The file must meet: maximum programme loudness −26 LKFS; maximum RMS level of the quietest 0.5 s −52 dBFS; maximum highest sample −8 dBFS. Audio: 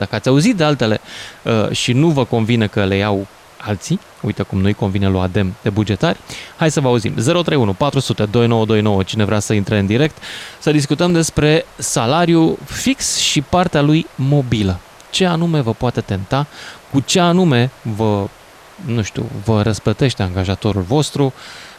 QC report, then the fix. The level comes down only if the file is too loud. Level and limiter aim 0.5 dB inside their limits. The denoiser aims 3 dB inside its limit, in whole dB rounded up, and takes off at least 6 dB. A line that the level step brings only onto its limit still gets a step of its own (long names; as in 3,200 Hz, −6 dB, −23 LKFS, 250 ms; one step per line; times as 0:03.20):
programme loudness −16.0 LKFS: out of spec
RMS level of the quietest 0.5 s −42 dBFS: out of spec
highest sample −3.5 dBFS: out of spec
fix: level −10.5 dB